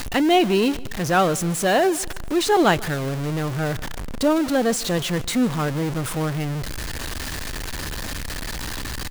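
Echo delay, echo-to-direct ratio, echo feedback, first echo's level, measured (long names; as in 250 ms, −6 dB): 147 ms, −20.5 dB, 41%, −21.5 dB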